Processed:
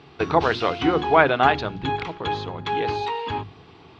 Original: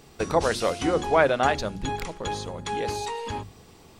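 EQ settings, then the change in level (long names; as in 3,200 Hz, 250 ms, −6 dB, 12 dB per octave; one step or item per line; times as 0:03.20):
loudspeaker in its box 100–3,700 Hz, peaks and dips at 210 Hz −9 dB, 550 Hz −10 dB, 1,900 Hz −3 dB
+6.5 dB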